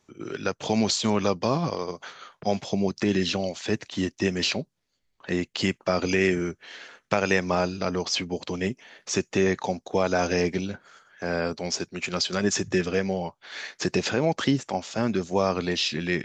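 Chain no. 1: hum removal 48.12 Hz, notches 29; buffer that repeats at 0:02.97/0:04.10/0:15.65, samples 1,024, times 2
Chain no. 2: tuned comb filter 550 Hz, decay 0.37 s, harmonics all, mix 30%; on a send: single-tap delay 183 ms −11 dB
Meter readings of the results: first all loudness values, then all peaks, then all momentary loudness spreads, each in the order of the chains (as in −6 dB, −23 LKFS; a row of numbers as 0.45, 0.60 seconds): −27.0, −29.0 LKFS; −5.0, −7.5 dBFS; 10, 11 LU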